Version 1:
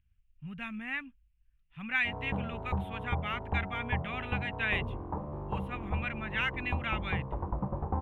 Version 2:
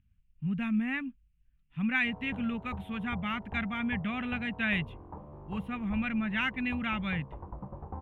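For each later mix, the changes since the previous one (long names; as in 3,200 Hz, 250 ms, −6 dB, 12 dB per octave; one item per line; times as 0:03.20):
speech: add parametric band 220 Hz +12.5 dB 1.8 octaves
background −8.5 dB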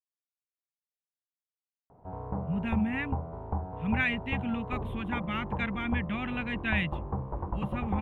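speech: entry +2.05 s
background +9.0 dB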